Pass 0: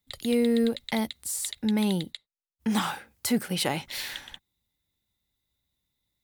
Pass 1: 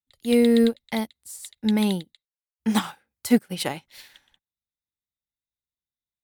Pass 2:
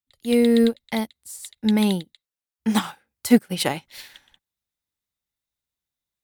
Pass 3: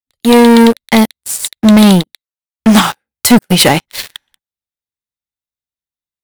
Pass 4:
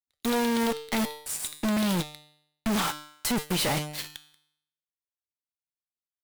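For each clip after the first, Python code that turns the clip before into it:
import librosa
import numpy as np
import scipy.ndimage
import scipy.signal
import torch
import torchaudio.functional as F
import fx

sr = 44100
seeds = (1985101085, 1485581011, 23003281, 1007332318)

y1 = fx.upward_expand(x, sr, threshold_db=-39.0, expansion=2.5)
y1 = F.gain(torch.from_numpy(y1), 8.5).numpy()
y2 = fx.rider(y1, sr, range_db=10, speed_s=2.0)
y3 = fx.leveller(y2, sr, passes=5)
y3 = F.gain(torch.from_numpy(y3), 2.0).numpy()
y4 = fx.comb_fb(y3, sr, f0_hz=150.0, decay_s=0.71, harmonics='all', damping=0.0, mix_pct=70)
y4 = np.clip(10.0 ** (20.0 / 20.0) * y4, -1.0, 1.0) / 10.0 ** (20.0 / 20.0)
y4 = fx.cheby_harmonics(y4, sr, harmonics=(4, 6), levels_db=(-10, -9), full_scale_db=-20.0)
y4 = F.gain(torch.from_numpy(y4), -4.5).numpy()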